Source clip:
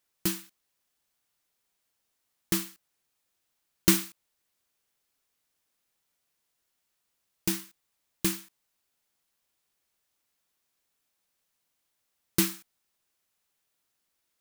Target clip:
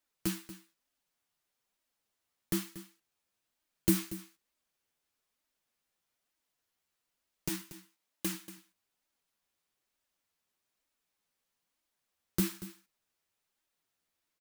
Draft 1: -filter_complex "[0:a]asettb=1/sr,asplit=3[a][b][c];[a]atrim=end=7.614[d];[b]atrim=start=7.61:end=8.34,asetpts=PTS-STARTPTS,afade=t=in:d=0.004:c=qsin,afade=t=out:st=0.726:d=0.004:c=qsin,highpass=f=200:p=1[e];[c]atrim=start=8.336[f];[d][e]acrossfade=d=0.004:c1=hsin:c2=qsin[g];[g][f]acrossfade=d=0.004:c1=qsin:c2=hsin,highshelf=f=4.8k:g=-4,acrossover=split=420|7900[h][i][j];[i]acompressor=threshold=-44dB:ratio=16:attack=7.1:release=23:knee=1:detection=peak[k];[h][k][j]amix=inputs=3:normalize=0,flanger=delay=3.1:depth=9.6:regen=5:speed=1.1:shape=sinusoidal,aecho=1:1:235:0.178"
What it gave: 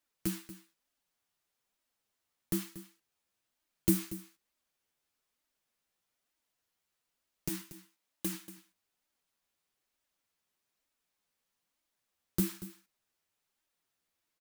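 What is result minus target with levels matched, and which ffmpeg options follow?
compressor: peak gain reduction +6 dB
-filter_complex "[0:a]asettb=1/sr,asplit=3[a][b][c];[a]atrim=end=7.614[d];[b]atrim=start=7.61:end=8.34,asetpts=PTS-STARTPTS,afade=t=in:d=0.004:c=qsin,afade=t=out:st=0.726:d=0.004:c=qsin,highpass=f=200:p=1[e];[c]atrim=start=8.336[f];[d][e]acrossfade=d=0.004:c1=hsin:c2=qsin[g];[g][f]acrossfade=d=0.004:c1=qsin:c2=hsin,highshelf=f=4.8k:g=-4,acrossover=split=420|7900[h][i][j];[i]acompressor=threshold=-37.5dB:ratio=16:attack=7.1:release=23:knee=1:detection=peak[k];[h][k][j]amix=inputs=3:normalize=0,flanger=delay=3.1:depth=9.6:regen=5:speed=1.1:shape=sinusoidal,aecho=1:1:235:0.178"

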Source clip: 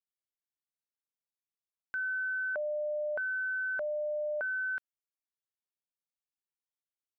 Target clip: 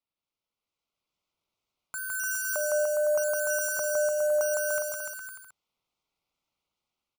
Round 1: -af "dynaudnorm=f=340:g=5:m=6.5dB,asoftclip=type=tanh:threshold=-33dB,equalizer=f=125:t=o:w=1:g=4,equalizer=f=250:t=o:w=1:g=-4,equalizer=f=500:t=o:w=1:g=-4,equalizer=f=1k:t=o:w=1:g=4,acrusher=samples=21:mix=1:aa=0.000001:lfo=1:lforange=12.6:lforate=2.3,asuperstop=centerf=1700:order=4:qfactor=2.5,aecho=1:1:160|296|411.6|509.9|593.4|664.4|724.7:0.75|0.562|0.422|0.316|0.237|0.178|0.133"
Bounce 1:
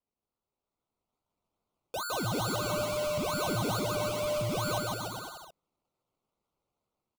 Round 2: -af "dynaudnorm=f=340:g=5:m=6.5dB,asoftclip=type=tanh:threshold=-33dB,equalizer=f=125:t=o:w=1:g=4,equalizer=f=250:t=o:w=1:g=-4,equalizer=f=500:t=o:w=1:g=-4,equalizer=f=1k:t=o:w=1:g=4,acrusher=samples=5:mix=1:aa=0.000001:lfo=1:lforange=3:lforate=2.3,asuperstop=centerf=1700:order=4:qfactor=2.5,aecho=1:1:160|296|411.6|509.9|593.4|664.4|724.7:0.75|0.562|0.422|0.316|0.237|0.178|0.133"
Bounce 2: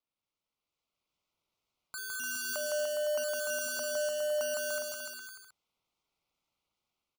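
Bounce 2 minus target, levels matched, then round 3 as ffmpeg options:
soft clip: distortion +16 dB
-af "dynaudnorm=f=340:g=5:m=6.5dB,asoftclip=type=tanh:threshold=-21dB,equalizer=f=125:t=o:w=1:g=4,equalizer=f=250:t=o:w=1:g=-4,equalizer=f=500:t=o:w=1:g=-4,equalizer=f=1k:t=o:w=1:g=4,acrusher=samples=5:mix=1:aa=0.000001:lfo=1:lforange=3:lforate=2.3,asuperstop=centerf=1700:order=4:qfactor=2.5,aecho=1:1:160|296|411.6|509.9|593.4|664.4|724.7:0.75|0.562|0.422|0.316|0.237|0.178|0.133"

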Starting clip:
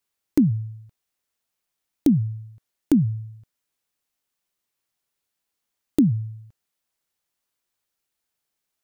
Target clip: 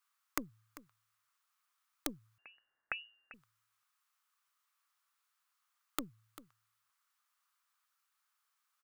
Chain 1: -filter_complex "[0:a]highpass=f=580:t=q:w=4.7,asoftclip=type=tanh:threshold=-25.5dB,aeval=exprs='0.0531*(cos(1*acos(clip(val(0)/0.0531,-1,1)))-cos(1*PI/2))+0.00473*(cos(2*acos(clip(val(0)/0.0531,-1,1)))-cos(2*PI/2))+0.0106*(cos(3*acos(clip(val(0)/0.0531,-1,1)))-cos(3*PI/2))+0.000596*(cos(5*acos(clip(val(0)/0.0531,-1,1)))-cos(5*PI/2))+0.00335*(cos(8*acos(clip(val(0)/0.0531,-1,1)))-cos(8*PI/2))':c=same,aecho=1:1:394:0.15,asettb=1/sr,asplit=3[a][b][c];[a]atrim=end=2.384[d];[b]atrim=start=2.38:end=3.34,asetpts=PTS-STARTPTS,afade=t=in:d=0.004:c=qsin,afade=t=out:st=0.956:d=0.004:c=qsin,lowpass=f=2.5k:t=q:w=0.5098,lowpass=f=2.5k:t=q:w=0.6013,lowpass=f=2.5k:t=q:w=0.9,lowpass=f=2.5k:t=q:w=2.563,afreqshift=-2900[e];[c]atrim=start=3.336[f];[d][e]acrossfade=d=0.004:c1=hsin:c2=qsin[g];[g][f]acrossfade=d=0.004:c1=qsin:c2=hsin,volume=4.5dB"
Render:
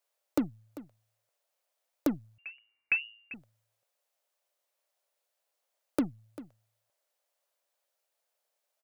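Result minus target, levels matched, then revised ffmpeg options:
1000 Hz band -10.5 dB
-filter_complex "[0:a]highpass=f=1.2k:t=q:w=4.7,asoftclip=type=tanh:threshold=-25.5dB,aeval=exprs='0.0531*(cos(1*acos(clip(val(0)/0.0531,-1,1)))-cos(1*PI/2))+0.00473*(cos(2*acos(clip(val(0)/0.0531,-1,1)))-cos(2*PI/2))+0.0106*(cos(3*acos(clip(val(0)/0.0531,-1,1)))-cos(3*PI/2))+0.000596*(cos(5*acos(clip(val(0)/0.0531,-1,1)))-cos(5*PI/2))+0.00335*(cos(8*acos(clip(val(0)/0.0531,-1,1)))-cos(8*PI/2))':c=same,aecho=1:1:394:0.15,asettb=1/sr,asplit=3[a][b][c];[a]atrim=end=2.384[d];[b]atrim=start=2.38:end=3.34,asetpts=PTS-STARTPTS,afade=t=in:d=0.004:c=qsin,afade=t=out:st=0.956:d=0.004:c=qsin,lowpass=f=2.5k:t=q:w=0.5098,lowpass=f=2.5k:t=q:w=0.6013,lowpass=f=2.5k:t=q:w=0.9,lowpass=f=2.5k:t=q:w=2.563,afreqshift=-2900[e];[c]atrim=start=3.336[f];[d][e]acrossfade=d=0.004:c1=hsin:c2=qsin[g];[g][f]acrossfade=d=0.004:c1=qsin:c2=hsin,volume=4.5dB"

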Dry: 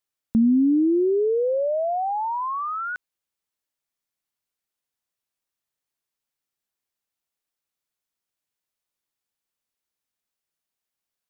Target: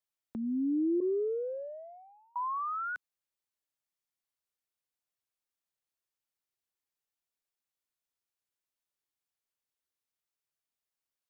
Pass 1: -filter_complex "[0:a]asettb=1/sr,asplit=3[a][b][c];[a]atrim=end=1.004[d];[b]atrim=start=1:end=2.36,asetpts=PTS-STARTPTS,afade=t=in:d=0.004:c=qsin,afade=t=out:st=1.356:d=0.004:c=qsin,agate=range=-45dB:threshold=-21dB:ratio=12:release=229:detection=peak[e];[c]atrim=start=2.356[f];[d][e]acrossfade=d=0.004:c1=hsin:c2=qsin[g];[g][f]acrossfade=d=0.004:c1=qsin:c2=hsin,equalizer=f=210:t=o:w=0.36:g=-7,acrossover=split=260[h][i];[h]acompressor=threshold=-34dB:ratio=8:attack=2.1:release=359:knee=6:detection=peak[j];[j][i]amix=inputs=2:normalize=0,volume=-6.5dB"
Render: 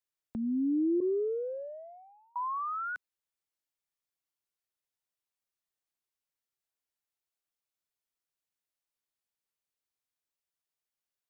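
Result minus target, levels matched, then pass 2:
compressor: peak gain reduction -9 dB
-filter_complex "[0:a]asettb=1/sr,asplit=3[a][b][c];[a]atrim=end=1.004[d];[b]atrim=start=1:end=2.36,asetpts=PTS-STARTPTS,afade=t=in:d=0.004:c=qsin,afade=t=out:st=1.356:d=0.004:c=qsin,agate=range=-45dB:threshold=-21dB:ratio=12:release=229:detection=peak[e];[c]atrim=start=2.356[f];[d][e]acrossfade=d=0.004:c1=hsin:c2=qsin[g];[g][f]acrossfade=d=0.004:c1=qsin:c2=hsin,equalizer=f=210:t=o:w=0.36:g=-7,acrossover=split=260[h][i];[h]acompressor=threshold=-44dB:ratio=8:attack=2.1:release=359:knee=6:detection=peak[j];[j][i]amix=inputs=2:normalize=0,volume=-6.5dB"

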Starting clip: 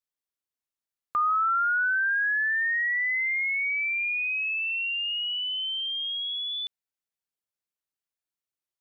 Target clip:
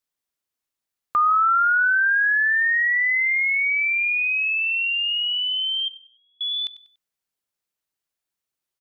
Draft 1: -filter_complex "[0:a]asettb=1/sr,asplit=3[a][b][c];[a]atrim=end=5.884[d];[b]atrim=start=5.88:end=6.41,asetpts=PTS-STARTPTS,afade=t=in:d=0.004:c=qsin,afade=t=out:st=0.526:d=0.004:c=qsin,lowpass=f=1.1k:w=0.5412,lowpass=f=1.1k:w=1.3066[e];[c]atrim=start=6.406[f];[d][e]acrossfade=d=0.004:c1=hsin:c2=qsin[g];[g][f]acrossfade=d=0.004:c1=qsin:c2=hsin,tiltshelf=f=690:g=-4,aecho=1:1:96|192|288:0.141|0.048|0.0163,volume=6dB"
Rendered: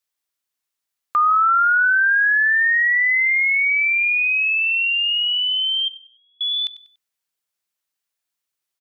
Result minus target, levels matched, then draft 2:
500 Hz band -4.0 dB
-filter_complex "[0:a]asettb=1/sr,asplit=3[a][b][c];[a]atrim=end=5.884[d];[b]atrim=start=5.88:end=6.41,asetpts=PTS-STARTPTS,afade=t=in:d=0.004:c=qsin,afade=t=out:st=0.526:d=0.004:c=qsin,lowpass=f=1.1k:w=0.5412,lowpass=f=1.1k:w=1.3066[e];[c]atrim=start=6.406[f];[d][e]acrossfade=d=0.004:c1=hsin:c2=qsin[g];[g][f]acrossfade=d=0.004:c1=qsin:c2=hsin,aecho=1:1:96|192|288:0.141|0.048|0.0163,volume=6dB"

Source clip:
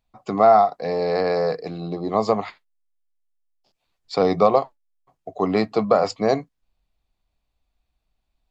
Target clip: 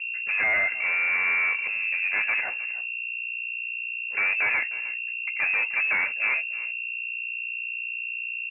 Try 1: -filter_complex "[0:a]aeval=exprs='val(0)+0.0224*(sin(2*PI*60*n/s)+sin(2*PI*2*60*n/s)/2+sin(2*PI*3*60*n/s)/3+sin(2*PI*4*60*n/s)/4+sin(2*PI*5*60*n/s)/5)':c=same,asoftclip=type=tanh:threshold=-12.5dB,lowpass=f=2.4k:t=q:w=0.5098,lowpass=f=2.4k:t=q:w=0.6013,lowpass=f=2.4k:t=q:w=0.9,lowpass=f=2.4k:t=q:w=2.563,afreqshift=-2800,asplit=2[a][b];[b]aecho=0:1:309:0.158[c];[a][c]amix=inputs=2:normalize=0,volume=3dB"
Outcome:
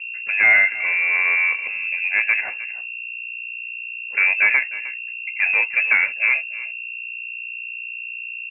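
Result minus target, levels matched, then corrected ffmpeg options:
soft clip: distortion -9 dB
-filter_complex "[0:a]aeval=exprs='val(0)+0.0224*(sin(2*PI*60*n/s)+sin(2*PI*2*60*n/s)/2+sin(2*PI*3*60*n/s)/3+sin(2*PI*4*60*n/s)/4+sin(2*PI*5*60*n/s)/5)':c=same,asoftclip=type=tanh:threshold=-24.5dB,lowpass=f=2.4k:t=q:w=0.5098,lowpass=f=2.4k:t=q:w=0.6013,lowpass=f=2.4k:t=q:w=0.9,lowpass=f=2.4k:t=q:w=2.563,afreqshift=-2800,asplit=2[a][b];[b]aecho=0:1:309:0.158[c];[a][c]amix=inputs=2:normalize=0,volume=3dB"

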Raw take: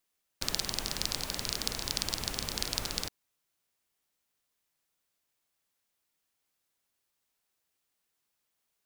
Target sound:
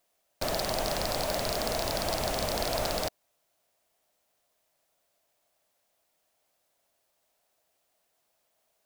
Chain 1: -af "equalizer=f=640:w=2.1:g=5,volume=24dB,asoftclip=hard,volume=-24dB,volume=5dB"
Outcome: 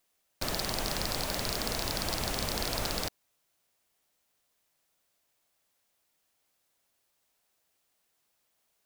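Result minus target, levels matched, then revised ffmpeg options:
500 Hz band -5.5 dB
-af "equalizer=f=640:w=2.1:g=15,volume=24dB,asoftclip=hard,volume=-24dB,volume=5dB"

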